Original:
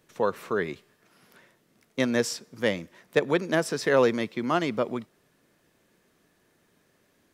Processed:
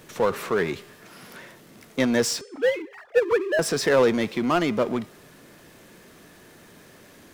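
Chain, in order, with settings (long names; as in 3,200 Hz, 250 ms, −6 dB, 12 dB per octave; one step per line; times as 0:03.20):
0:02.41–0:03.59: three sine waves on the formant tracks
power curve on the samples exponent 0.7
hum removal 406.3 Hz, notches 23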